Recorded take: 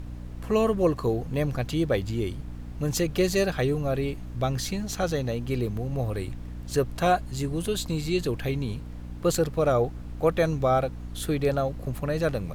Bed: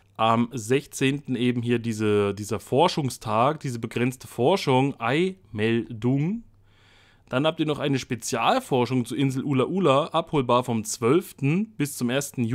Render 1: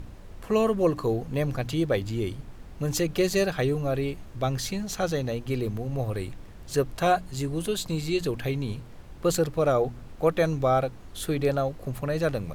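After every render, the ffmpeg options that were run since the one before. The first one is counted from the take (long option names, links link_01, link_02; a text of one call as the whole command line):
ffmpeg -i in.wav -af "bandreject=frequency=60:width_type=h:width=4,bandreject=frequency=120:width_type=h:width=4,bandreject=frequency=180:width_type=h:width=4,bandreject=frequency=240:width_type=h:width=4,bandreject=frequency=300:width_type=h:width=4" out.wav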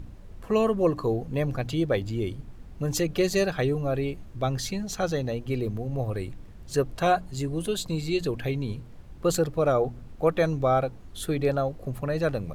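ffmpeg -i in.wav -af "afftdn=noise_reduction=6:noise_floor=-44" out.wav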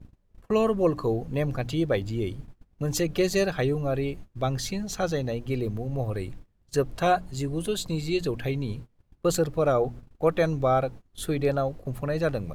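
ffmpeg -i in.wav -af "agate=range=-23dB:threshold=-38dB:ratio=16:detection=peak" out.wav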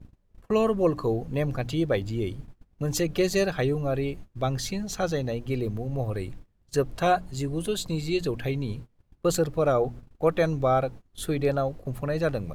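ffmpeg -i in.wav -af anull out.wav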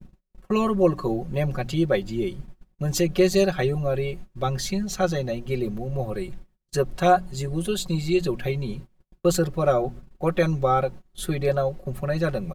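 ffmpeg -i in.wav -af "agate=range=-21dB:threshold=-56dB:ratio=16:detection=peak,aecho=1:1:5.4:0.86" out.wav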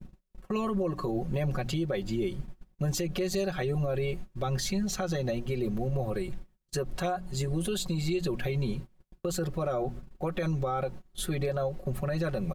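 ffmpeg -i in.wav -af "acompressor=threshold=-22dB:ratio=6,alimiter=limit=-22dB:level=0:latency=1:release=61" out.wav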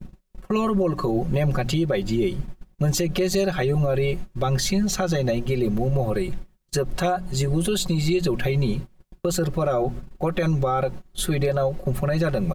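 ffmpeg -i in.wav -af "volume=8dB" out.wav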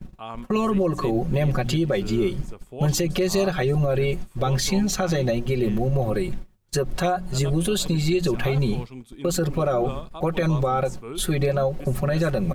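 ffmpeg -i in.wav -i bed.wav -filter_complex "[1:a]volume=-15.5dB[link_01];[0:a][link_01]amix=inputs=2:normalize=0" out.wav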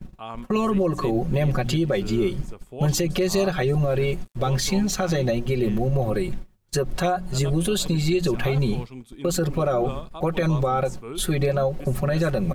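ffmpeg -i in.wav -filter_complex "[0:a]asettb=1/sr,asplit=3[link_01][link_02][link_03];[link_01]atrim=end=3.794[link_04];[link_02]atrim=start=3.79:end=5.1,asetpts=PTS-STARTPTS,afade=type=in:duration=0.004:curve=qsin,afade=type=out:start_time=1.306:duration=0.004:curve=qsin,aeval=exprs='sgn(val(0))*max(abs(val(0))-0.00473,0)':channel_layout=same[link_05];[link_03]atrim=start=5.096[link_06];[link_04][link_05]acrossfade=duration=0.004:curve1=hsin:curve2=qsin[link_07];[link_07][link_06]acrossfade=duration=0.004:curve1=qsin:curve2=hsin" out.wav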